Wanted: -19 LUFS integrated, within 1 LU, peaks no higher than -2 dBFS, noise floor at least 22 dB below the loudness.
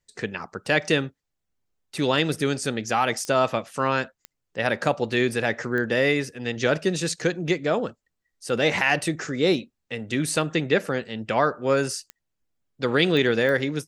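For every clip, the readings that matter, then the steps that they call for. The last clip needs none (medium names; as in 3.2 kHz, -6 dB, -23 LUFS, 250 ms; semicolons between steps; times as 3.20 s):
clicks found 6; loudness -24.0 LUFS; peak level -6.0 dBFS; loudness target -19.0 LUFS
-> de-click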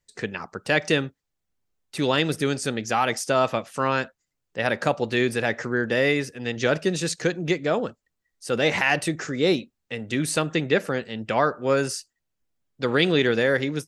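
clicks found 0; loudness -24.0 LUFS; peak level -6.0 dBFS; loudness target -19.0 LUFS
-> trim +5 dB; peak limiter -2 dBFS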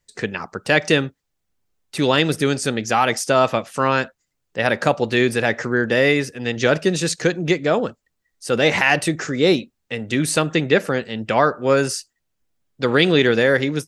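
loudness -19.0 LUFS; peak level -2.0 dBFS; noise floor -75 dBFS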